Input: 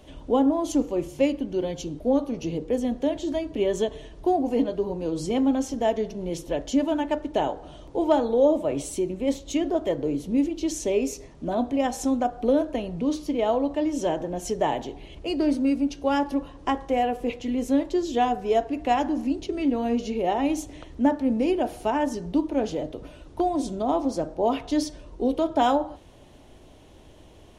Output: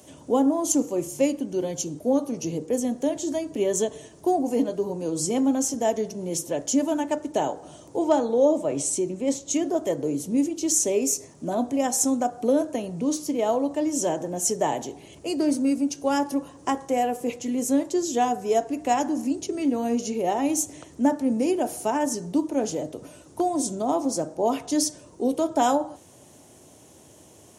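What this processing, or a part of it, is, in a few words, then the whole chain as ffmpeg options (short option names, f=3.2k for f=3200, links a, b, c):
budget condenser microphone: -filter_complex "[0:a]asettb=1/sr,asplit=3[a][b][c];[a]atrim=end=7.994[d];[b]atrim=start=7.99:end=9.54,asetpts=PTS-STARTPTS,afade=t=in:d=0.004:c=qsin,afade=t=out:st=1.546:d=0.004:c=qsin,lowpass=7.5k[e];[c]atrim=start=9.536[f];[d][e]acrossfade=d=0.004:c1=hsin:c2=qsin[g];[g][f]acrossfade=d=0.004:c1=qsin:c2=hsin,highpass=f=97:w=0.5412,highpass=f=97:w=1.3066,highshelf=f=5.1k:t=q:w=1.5:g=12"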